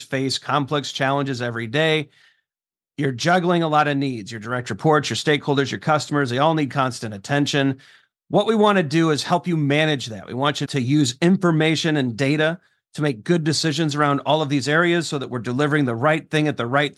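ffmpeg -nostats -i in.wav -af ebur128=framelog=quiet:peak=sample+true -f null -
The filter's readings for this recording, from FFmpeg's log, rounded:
Integrated loudness:
  I:         -20.3 LUFS
  Threshold: -30.6 LUFS
Loudness range:
  LRA:         2.1 LU
  Threshold: -40.6 LUFS
  LRA low:   -21.8 LUFS
  LRA high:  -19.7 LUFS
Sample peak:
  Peak:       -3.9 dBFS
True peak:
  Peak:       -3.9 dBFS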